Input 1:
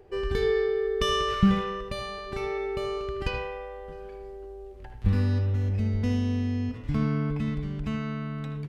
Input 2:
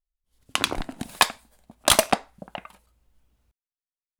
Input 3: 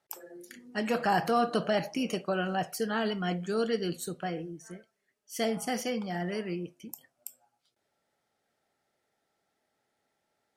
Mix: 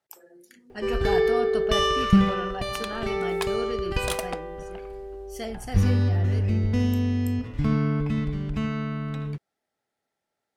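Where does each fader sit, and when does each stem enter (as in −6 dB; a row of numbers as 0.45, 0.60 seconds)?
+3.0, −14.0, −4.5 decibels; 0.70, 2.20, 0.00 seconds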